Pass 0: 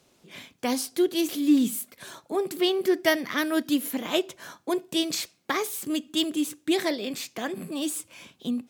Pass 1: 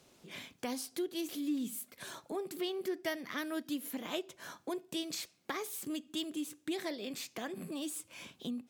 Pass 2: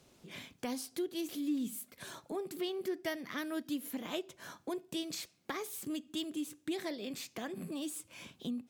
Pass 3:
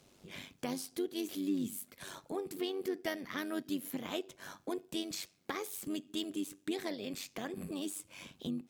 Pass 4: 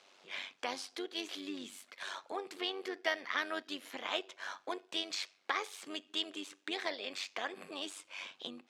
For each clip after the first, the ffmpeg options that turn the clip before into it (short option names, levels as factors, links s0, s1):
-af "acompressor=threshold=0.00708:ratio=2,volume=0.891"
-af "lowshelf=f=190:g=6.5,volume=0.841"
-af "tremolo=f=96:d=0.621,volume=1.41"
-af "highpass=780,lowpass=4300,volume=2.37"